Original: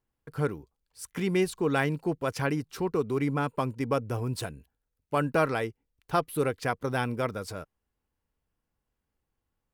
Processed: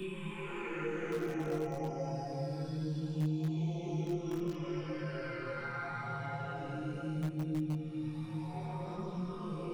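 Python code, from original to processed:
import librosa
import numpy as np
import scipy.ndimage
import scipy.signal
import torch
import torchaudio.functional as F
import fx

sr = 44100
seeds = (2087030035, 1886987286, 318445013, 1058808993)

p1 = fx.spec_delay(x, sr, highs='early', ms=945)
p2 = scipy.signal.sosfilt(scipy.signal.butter(2, 5800.0, 'lowpass', fs=sr, output='sos'), p1)
p3 = fx.low_shelf(p2, sr, hz=160.0, db=4.5)
p4 = fx.resonator_bank(p3, sr, root=39, chord='sus4', decay_s=0.51)
p5 = fx.env_flanger(p4, sr, rest_ms=10.6, full_db=-40.0)
p6 = fx.paulstretch(p5, sr, seeds[0], factor=6.7, window_s=0.25, from_s=1.43)
p7 = (np.mod(10.0 ** (35.0 / 20.0) * p6 + 1.0, 2.0) - 1.0) / 10.0 ** (35.0 / 20.0)
p8 = p6 + F.gain(torch.from_numpy(p7), -9.5).numpy()
p9 = fx.chorus_voices(p8, sr, voices=4, hz=0.42, base_ms=22, depth_ms=4.2, mix_pct=50)
p10 = fx.band_squash(p9, sr, depth_pct=70)
y = F.gain(torch.from_numpy(p10), 8.0).numpy()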